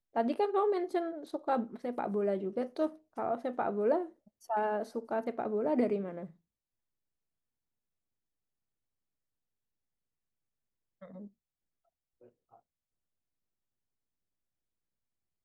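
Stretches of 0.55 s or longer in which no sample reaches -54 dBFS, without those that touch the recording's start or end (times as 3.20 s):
6.31–11.02 s
11.28–12.21 s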